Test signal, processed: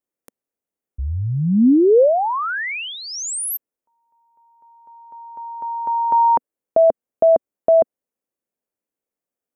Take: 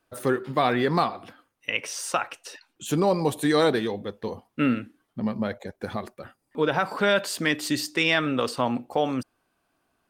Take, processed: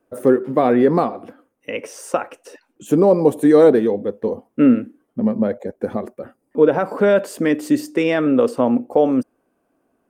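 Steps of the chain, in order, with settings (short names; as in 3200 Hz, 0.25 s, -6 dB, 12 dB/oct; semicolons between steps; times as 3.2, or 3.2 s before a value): graphic EQ 250/500/4000 Hz +10/+11/-10 dB; gain -1 dB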